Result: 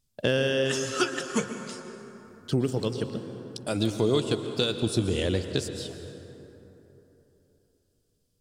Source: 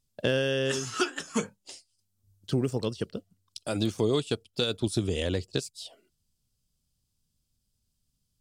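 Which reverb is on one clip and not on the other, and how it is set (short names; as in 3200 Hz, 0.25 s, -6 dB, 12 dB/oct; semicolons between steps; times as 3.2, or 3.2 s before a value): plate-style reverb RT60 3.5 s, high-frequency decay 0.45×, pre-delay 0.105 s, DRR 7.5 dB; gain +1.5 dB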